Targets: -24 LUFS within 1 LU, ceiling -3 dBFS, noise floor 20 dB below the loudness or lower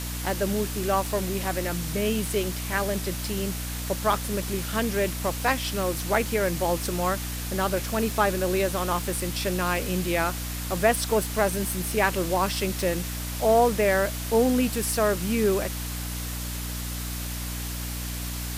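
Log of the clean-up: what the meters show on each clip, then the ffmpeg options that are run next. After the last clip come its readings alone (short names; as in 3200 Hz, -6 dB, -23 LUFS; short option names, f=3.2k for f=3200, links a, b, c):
hum 60 Hz; harmonics up to 300 Hz; hum level -31 dBFS; noise floor -32 dBFS; noise floor target -46 dBFS; loudness -26.0 LUFS; peak -7.5 dBFS; loudness target -24.0 LUFS
-> -af "bandreject=f=60:t=h:w=4,bandreject=f=120:t=h:w=4,bandreject=f=180:t=h:w=4,bandreject=f=240:t=h:w=4,bandreject=f=300:t=h:w=4"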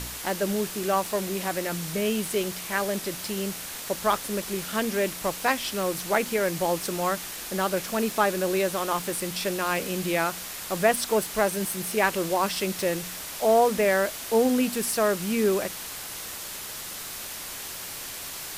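hum none; noise floor -37 dBFS; noise floor target -47 dBFS
-> -af "afftdn=nr=10:nf=-37"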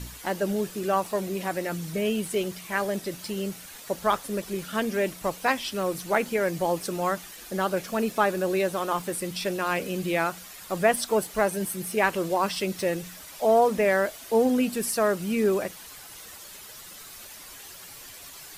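noise floor -45 dBFS; noise floor target -47 dBFS
-> -af "afftdn=nr=6:nf=-45"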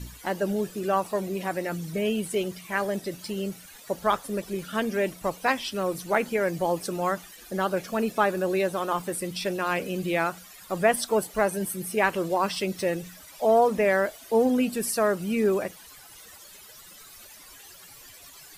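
noise floor -48 dBFS; loudness -27.0 LUFS; peak -8.0 dBFS; loudness target -24.0 LUFS
-> -af "volume=3dB"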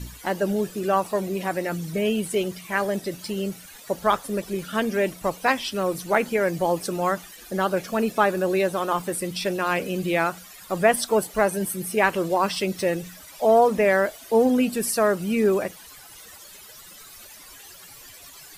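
loudness -24.0 LUFS; peak -5.0 dBFS; noise floor -45 dBFS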